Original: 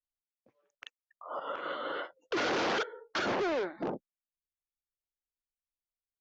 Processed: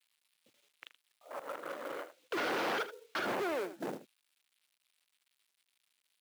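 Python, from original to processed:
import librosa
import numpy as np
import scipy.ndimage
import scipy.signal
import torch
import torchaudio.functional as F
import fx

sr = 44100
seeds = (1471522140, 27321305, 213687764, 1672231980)

p1 = fx.wiener(x, sr, points=41)
p2 = p1 + 10.0 ** (-14.5 / 20.0) * np.pad(p1, (int(78 * sr / 1000.0), 0))[:len(p1)]
p3 = 10.0 ** (-36.0 / 20.0) * np.tanh(p2 / 10.0 ** (-36.0 / 20.0))
p4 = p2 + (p3 * librosa.db_to_amplitude(-3.0))
p5 = fx.high_shelf(p4, sr, hz=3300.0, db=-11.5)
p6 = fx.dmg_noise_band(p5, sr, seeds[0], low_hz=2100.0, high_hz=4100.0, level_db=-76.0)
p7 = fx.quant_companded(p6, sr, bits=6)
p8 = scipy.signal.sosfilt(scipy.signal.butter(2, 120.0, 'highpass', fs=sr, output='sos'), p7)
p9 = fx.tilt_shelf(p8, sr, db=-4.0, hz=880.0)
y = p9 * librosa.db_to_amplitude(-3.5)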